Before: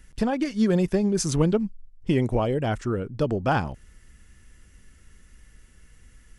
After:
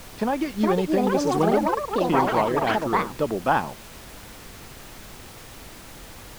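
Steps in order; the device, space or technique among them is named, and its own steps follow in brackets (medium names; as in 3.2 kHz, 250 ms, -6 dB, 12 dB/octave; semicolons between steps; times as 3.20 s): ever faster or slower copies 480 ms, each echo +6 st, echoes 3; horn gramophone (band-pass 210–4300 Hz; peaking EQ 960 Hz +6 dB; wow and flutter; pink noise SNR 17 dB)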